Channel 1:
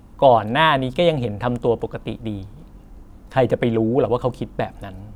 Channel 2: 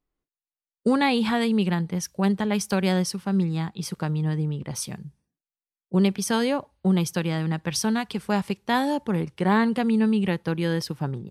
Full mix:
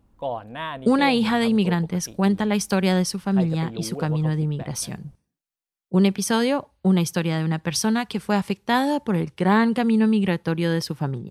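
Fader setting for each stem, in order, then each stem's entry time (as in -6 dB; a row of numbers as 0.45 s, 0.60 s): -15.5 dB, +2.5 dB; 0.00 s, 0.00 s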